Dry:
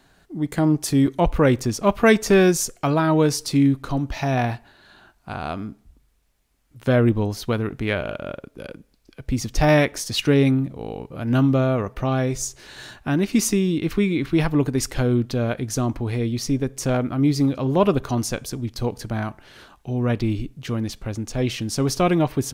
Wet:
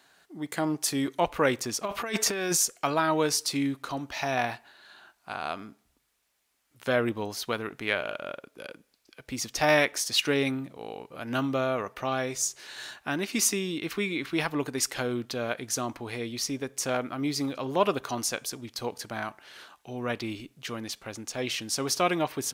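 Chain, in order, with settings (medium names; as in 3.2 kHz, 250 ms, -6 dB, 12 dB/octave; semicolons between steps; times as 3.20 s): high-pass 920 Hz 6 dB/octave; 1.85–2.57 s: compressor with a negative ratio -29 dBFS, ratio -1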